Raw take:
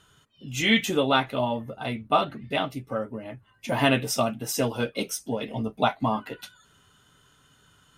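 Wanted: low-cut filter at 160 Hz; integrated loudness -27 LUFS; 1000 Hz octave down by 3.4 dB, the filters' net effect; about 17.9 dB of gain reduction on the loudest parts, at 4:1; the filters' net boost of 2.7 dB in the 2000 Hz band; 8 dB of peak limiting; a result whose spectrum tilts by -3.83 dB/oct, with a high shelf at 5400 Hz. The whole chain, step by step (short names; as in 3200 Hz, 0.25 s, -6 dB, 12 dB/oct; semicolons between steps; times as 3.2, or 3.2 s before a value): HPF 160 Hz; bell 1000 Hz -6 dB; bell 2000 Hz +6 dB; high shelf 5400 Hz -7.5 dB; compressor 4:1, threshold -38 dBFS; gain +15.5 dB; limiter -15 dBFS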